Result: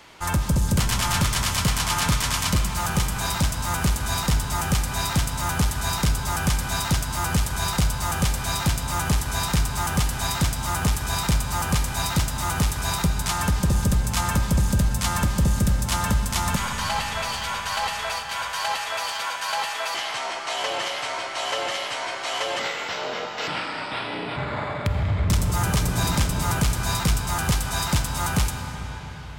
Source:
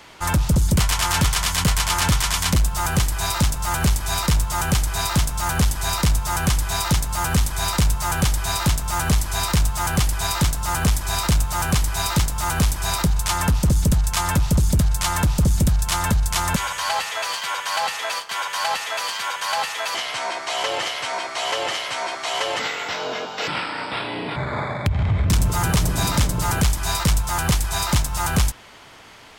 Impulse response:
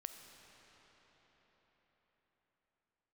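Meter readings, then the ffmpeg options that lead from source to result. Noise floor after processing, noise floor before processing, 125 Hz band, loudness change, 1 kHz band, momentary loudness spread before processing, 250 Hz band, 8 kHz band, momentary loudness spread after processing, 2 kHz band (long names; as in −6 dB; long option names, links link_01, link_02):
−32 dBFS, −32 dBFS, −2.5 dB, −2.5 dB, −2.5 dB, 6 LU, −2.0 dB, −3.0 dB, 6 LU, −2.0 dB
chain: -filter_complex "[1:a]atrim=start_sample=2205[link_01];[0:a][link_01]afir=irnorm=-1:irlink=0,volume=1.5dB"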